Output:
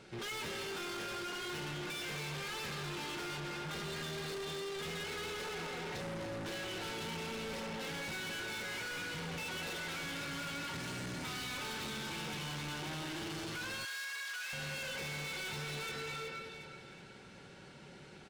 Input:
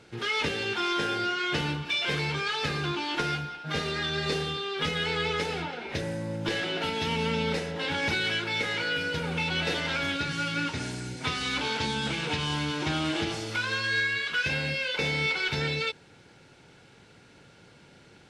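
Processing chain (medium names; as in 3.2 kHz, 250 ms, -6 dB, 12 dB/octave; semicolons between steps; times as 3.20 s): reverberation RT60 1.3 s, pre-delay 239 ms, DRR 5.5 dB; saturation -30.5 dBFS, distortion -9 dB; comb 5.3 ms, depth 36%; echo whose repeats swap between lows and highs 184 ms, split 2.4 kHz, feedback 61%, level -6 dB; peak limiter -27 dBFS, peak gain reduction 4.5 dB; hard clipper -37.5 dBFS, distortion -9 dB; 13.85–14.53 s: high-pass 1.1 kHz 12 dB/octave; trim -2 dB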